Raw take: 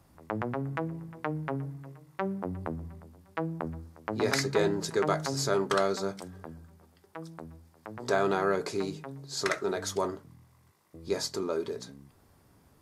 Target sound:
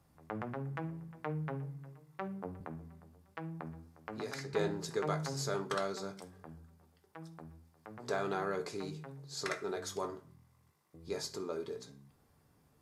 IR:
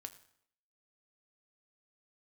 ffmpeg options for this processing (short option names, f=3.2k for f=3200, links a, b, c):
-filter_complex "[0:a]asettb=1/sr,asplit=3[a][b][c];[a]atrim=end=2.604[d];[b]atrim=start=2.6:end=4.54,asetpts=PTS-STARTPTS,afade=t=in:d=0.004:c=qsin,afade=t=out:st=1.936:d=0.004:c=qsin,acrossover=split=110|4400[e][f][g];[e]acompressor=threshold=-56dB:ratio=4[h];[f]acompressor=threshold=-32dB:ratio=4[i];[g]acompressor=threshold=-45dB:ratio=4[j];[h][i][j]amix=inputs=3:normalize=0[k];[c]atrim=start=4.536[l];[d][k]acrossfade=d=0.004:c1=hsin:c2=qsin[m];[m][l]acrossfade=d=0.004:c1=qsin:c2=hsin[n];[1:a]atrim=start_sample=2205,asetrate=70560,aresample=44100[o];[n][o]afir=irnorm=-1:irlink=0,volume=2dB"